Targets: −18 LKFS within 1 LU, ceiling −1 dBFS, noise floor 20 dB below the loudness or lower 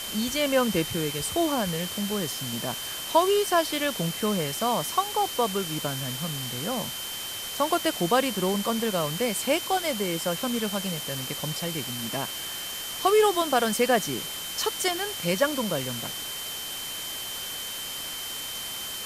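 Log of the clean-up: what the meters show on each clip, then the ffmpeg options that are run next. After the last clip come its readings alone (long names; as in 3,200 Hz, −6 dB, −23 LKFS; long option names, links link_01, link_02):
interfering tone 3,100 Hz; level of the tone −36 dBFS; background noise floor −35 dBFS; target noise floor −47 dBFS; integrated loudness −27.0 LKFS; sample peak −8.5 dBFS; target loudness −18.0 LKFS
→ -af "bandreject=frequency=3100:width=30"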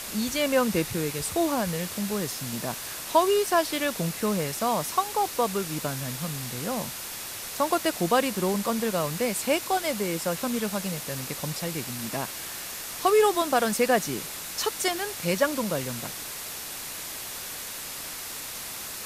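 interfering tone none found; background noise floor −37 dBFS; target noise floor −48 dBFS
→ -af "afftdn=noise_reduction=11:noise_floor=-37"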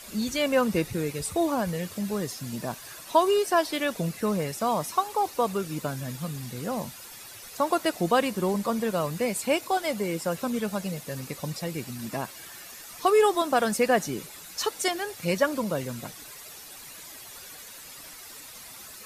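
background noise floor −45 dBFS; target noise floor −48 dBFS
→ -af "afftdn=noise_reduction=6:noise_floor=-45"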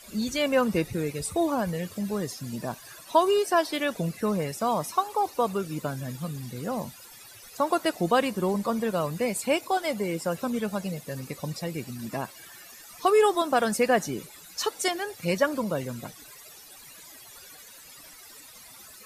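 background noise floor −49 dBFS; integrated loudness −27.5 LKFS; sample peak −9.0 dBFS; target loudness −18.0 LKFS
→ -af "volume=9.5dB,alimiter=limit=-1dB:level=0:latency=1"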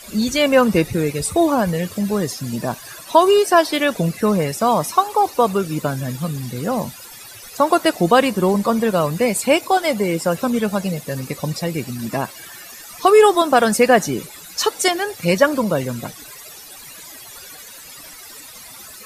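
integrated loudness −18.0 LKFS; sample peak −1.0 dBFS; background noise floor −39 dBFS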